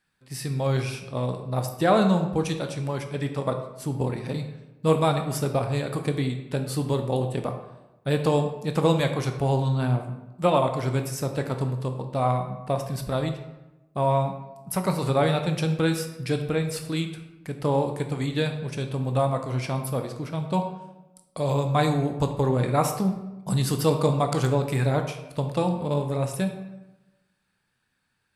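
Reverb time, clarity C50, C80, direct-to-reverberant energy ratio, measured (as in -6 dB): 1.0 s, 8.0 dB, 10.0 dB, 5.5 dB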